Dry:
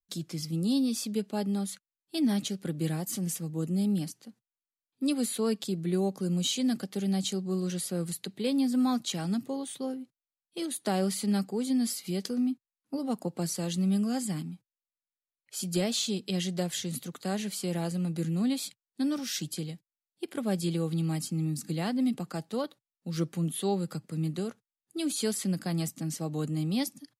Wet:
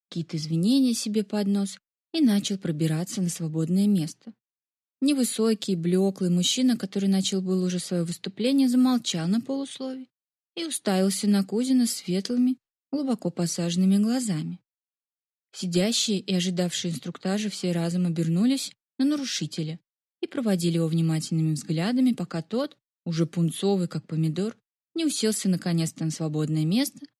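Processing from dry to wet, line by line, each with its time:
9.71–10.80 s: tilt shelf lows -5 dB, about 1.3 kHz
whole clip: expander -46 dBFS; level-controlled noise filter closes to 2.4 kHz, open at -24.5 dBFS; dynamic bell 890 Hz, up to -7 dB, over -51 dBFS, Q 2; trim +6 dB

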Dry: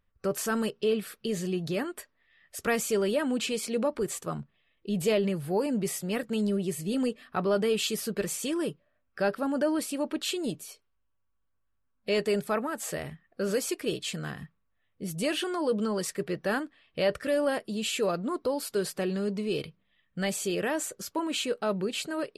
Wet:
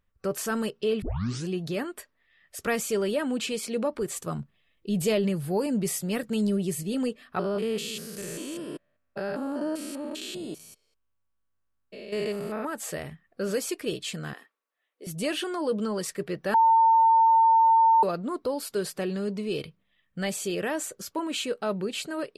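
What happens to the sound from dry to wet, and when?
1.02 s: tape start 0.46 s
4.16–6.83 s: tone controls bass +4 dB, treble +4 dB
7.39–12.65 s: spectrogram pixelated in time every 200 ms
14.33–15.07 s: inverse Chebyshev high-pass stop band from 170 Hz
16.54–18.03 s: bleep 903 Hz -15.5 dBFS

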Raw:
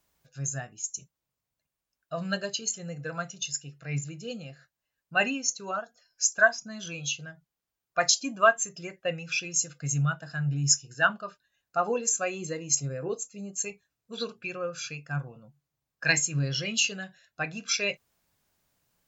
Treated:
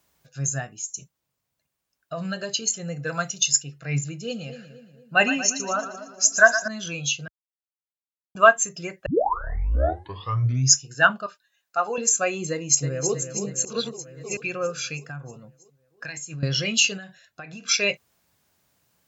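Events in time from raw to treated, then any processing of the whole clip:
0.71–2.51 s: compression 3:1, threshold -33 dBFS
3.07–3.63 s: treble shelf 3.5 kHz +8.5 dB
4.21–6.68 s: two-band feedback delay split 620 Hz, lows 240 ms, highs 116 ms, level -11 dB
7.28–8.35 s: mute
9.06 s: tape start 1.70 s
11.26–11.98 s: high-pass 920 Hz 6 dB/octave
12.50–13.14 s: echo throw 320 ms, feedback 65%, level -8.5 dB
13.65–14.37 s: reverse
15.07–16.43 s: compression 8:1, threshold -38 dBFS
16.97–17.67 s: compression 12:1, threshold -41 dBFS
whole clip: high-pass 58 Hz; trim +6 dB

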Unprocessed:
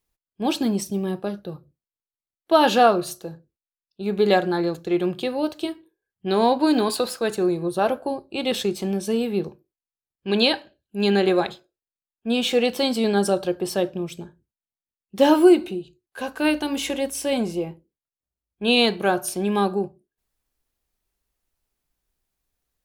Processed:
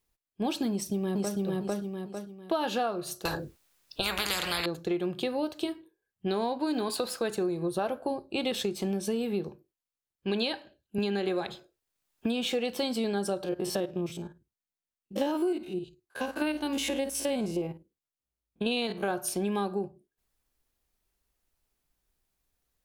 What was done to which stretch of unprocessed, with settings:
0.70–1.39 s: echo throw 450 ms, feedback 30%, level -0.5 dB
3.25–4.66 s: spectrum-flattening compressor 10:1
10.98–12.46 s: three bands compressed up and down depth 70%
13.44–19.11 s: spectrogram pixelated in time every 50 ms
whole clip: compression 6:1, threshold -27 dBFS

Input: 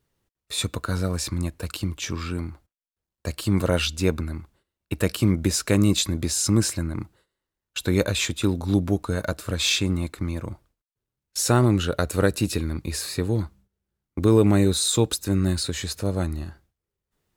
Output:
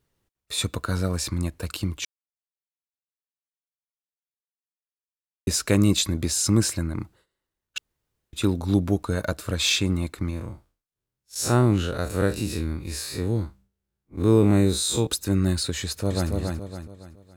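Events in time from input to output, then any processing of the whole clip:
2.05–5.47 s: mute
7.78–8.33 s: room tone
10.30–15.07 s: spectral blur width 81 ms
15.82–16.31 s: echo throw 280 ms, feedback 40%, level -3.5 dB

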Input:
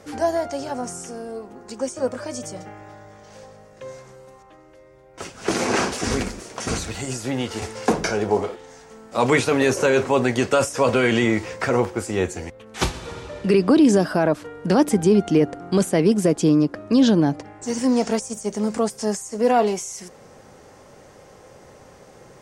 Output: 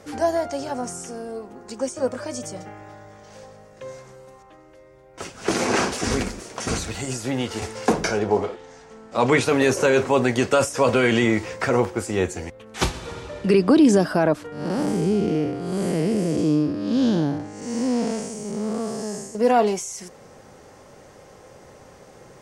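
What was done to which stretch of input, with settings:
8.19–9.41 s: distance through air 54 m
14.52–19.35 s: spectral blur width 245 ms

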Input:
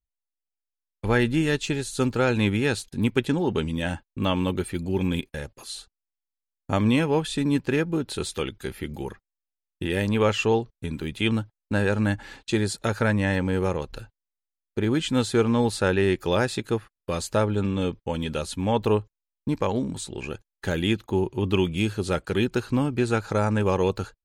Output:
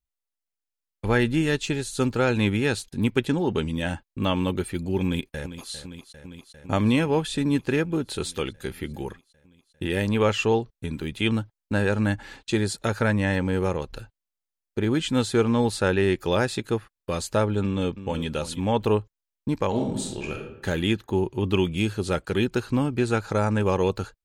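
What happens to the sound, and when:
5.04–5.72 s: echo throw 400 ms, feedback 80%, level -12.5 dB
17.63–18.26 s: echo throw 330 ms, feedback 15%, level -12.5 dB
19.68–20.65 s: reverb throw, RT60 0.81 s, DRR 1 dB

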